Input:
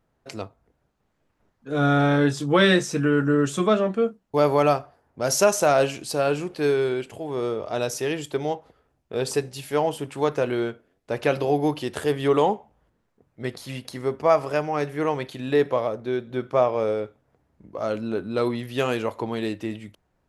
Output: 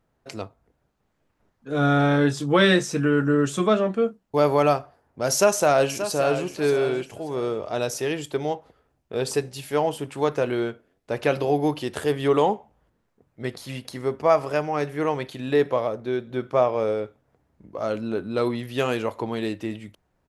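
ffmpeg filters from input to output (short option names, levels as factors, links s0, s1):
-filter_complex "[0:a]asplit=2[s0][s1];[s1]afade=t=in:st=5.31:d=0.01,afade=t=out:st=6.44:d=0.01,aecho=0:1:580|1160|1740:0.298538|0.0746346|0.0186586[s2];[s0][s2]amix=inputs=2:normalize=0"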